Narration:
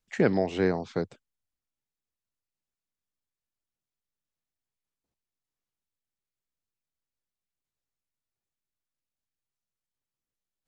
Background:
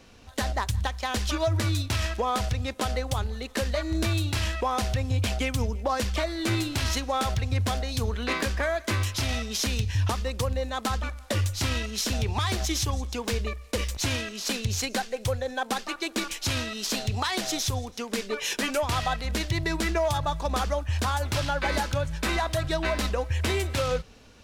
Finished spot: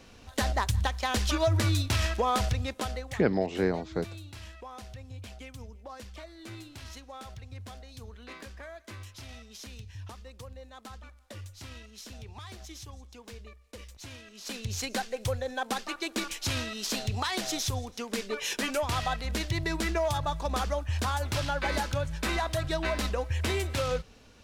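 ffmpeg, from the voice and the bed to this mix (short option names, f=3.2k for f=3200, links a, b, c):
-filter_complex "[0:a]adelay=3000,volume=-2dB[a];[1:a]volume=14.5dB,afade=t=out:st=2.44:d=0.79:silence=0.133352,afade=t=in:st=14.23:d=0.77:silence=0.188365[b];[a][b]amix=inputs=2:normalize=0"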